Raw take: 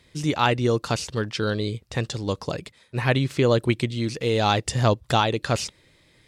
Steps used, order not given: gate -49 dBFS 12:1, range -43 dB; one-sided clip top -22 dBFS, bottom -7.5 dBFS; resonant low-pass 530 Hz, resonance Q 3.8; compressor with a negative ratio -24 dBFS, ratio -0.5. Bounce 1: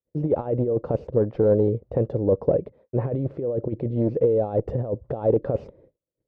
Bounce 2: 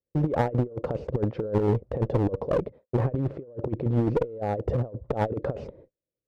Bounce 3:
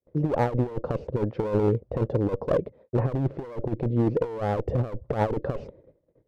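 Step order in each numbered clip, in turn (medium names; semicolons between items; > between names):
compressor with a negative ratio > gate > one-sided clip > resonant low-pass; gate > resonant low-pass > compressor with a negative ratio > one-sided clip; resonant low-pass > one-sided clip > compressor with a negative ratio > gate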